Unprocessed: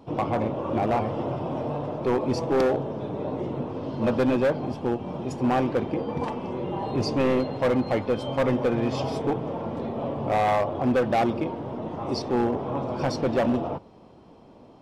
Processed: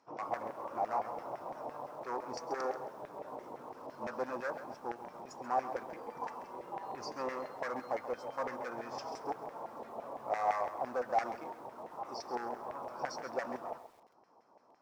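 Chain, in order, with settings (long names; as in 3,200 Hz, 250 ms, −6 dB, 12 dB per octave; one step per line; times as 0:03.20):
high shelf with overshoot 4,300 Hz +10 dB, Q 3
auto-filter band-pass saw down 5.9 Hz 730–2,000 Hz
feedback echo at a low word length 134 ms, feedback 35%, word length 9 bits, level −11.5 dB
level −3.5 dB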